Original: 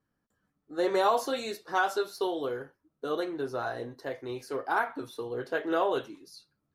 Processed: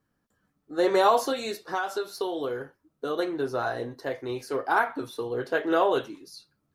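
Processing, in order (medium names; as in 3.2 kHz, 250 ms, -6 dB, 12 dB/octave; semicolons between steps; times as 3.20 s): 1.32–3.19 s: compression 4:1, threshold -31 dBFS, peak gain reduction 8.5 dB; trim +4.5 dB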